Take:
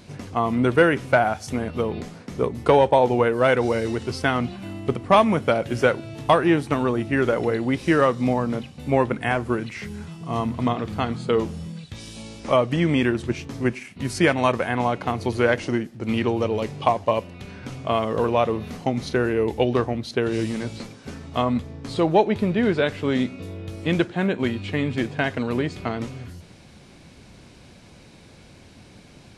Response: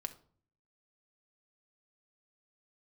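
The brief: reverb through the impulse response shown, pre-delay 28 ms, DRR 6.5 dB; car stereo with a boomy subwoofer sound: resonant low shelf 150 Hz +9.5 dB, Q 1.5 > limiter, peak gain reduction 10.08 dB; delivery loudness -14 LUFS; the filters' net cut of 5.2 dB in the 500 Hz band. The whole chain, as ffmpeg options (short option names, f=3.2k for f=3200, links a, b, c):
-filter_complex "[0:a]equalizer=f=500:t=o:g=-5.5,asplit=2[a][b];[1:a]atrim=start_sample=2205,adelay=28[c];[b][c]afir=irnorm=-1:irlink=0,volume=-4.5dB[d];[a][d]amix=inputs=2:normalize=0,lowshelf=f=150:t=q:w=1.5:g=9.5,volume=10.5dB,alimiter=limit=-3.5dB:level=0:latency=1"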